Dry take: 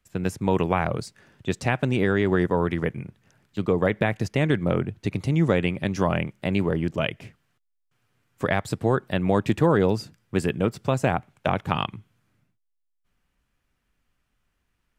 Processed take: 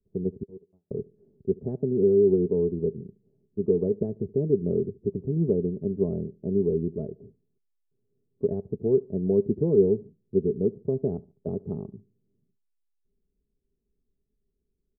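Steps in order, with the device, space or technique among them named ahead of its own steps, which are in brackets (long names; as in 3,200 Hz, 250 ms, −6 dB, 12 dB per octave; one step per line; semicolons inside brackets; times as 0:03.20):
comb filter 4.7 ms, depth 40%
0:00.43–0:00.91: noise gate −15 dBFS, range −56 dB
under water (low-pass filter 440 Hz 24 dB per octave; parametric band 400 Hz +12 dB 0.31 octaves)
repeating echo 73 ms, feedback 36%, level −23.5 dB
level −5 dB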